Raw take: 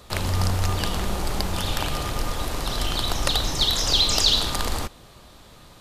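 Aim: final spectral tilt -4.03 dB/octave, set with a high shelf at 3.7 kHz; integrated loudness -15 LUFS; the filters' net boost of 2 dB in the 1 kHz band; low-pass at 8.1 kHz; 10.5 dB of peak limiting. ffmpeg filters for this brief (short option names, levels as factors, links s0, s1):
-af "lowpass=8100,equalizer=f=1000:t=o:g=3,highshelf=f=3700:g=-5.5,volume=4.22,alimiter=limit=0.631:level=0:latency=1"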